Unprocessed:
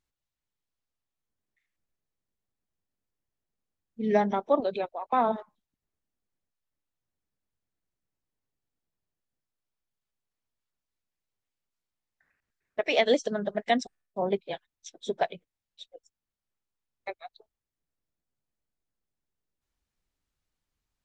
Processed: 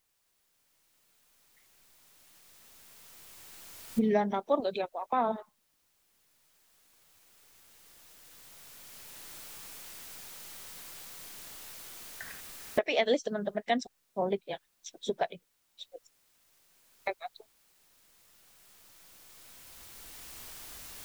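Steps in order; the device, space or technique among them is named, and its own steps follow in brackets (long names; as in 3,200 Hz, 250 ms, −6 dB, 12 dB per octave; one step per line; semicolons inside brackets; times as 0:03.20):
0:04.34–0:04.82: high-shelf EQ 4,200 Hz +11.5 dB
cheap recorder with automatic gain (white noise bed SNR 38 dB; camcorder AGC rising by 7.4 dB per second)
level −4 dB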